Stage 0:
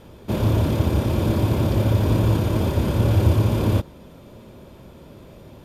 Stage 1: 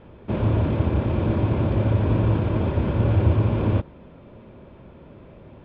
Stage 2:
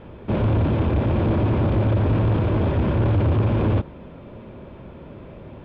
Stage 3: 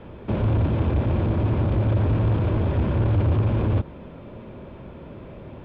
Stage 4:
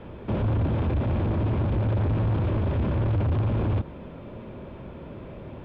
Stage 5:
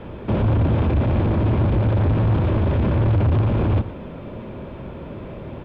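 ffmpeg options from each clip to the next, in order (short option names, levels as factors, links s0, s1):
-af "lowpass=f=2800:w=0.5412,lowpass=f=2800:w=1.3066,volume=0.841"
-af "asoftclip=type=tanh:threshold=0.0944,volume=1.88"
-filter_complex "[0:a]acrossover=split=130[s0][s1];[s1]acompressor=threshold=0.0631:ratio=6[s2];[s0][s2]amix=inputs=2:normalize=0"
-af "asoftclip=type=tanh:threshold=0.112"
-af "aecho=1:1:116:0.178,volume=2"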